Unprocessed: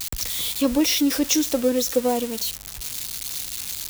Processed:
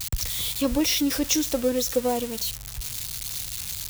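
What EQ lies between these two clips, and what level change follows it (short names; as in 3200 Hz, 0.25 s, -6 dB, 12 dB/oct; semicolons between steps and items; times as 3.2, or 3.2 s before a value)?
resonant low shelf 170 Hz +7.5 dB, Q 1.5; -2.0 dB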